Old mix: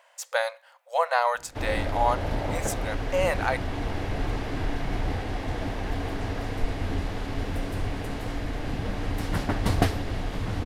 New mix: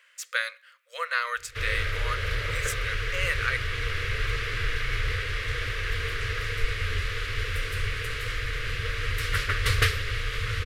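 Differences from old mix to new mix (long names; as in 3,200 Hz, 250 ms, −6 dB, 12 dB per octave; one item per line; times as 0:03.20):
speech −6.0 dB
master: add drawn EQ curve 120 Hz 0 dB, 200 Hz −24 dB, 320 Hz −18 dB, 460 Hz +2 dB, 800 Hz −28 dB, 1,200 Hz +6 dB, 2,200 Hz +11 dB, 6,000 Hz +5 dB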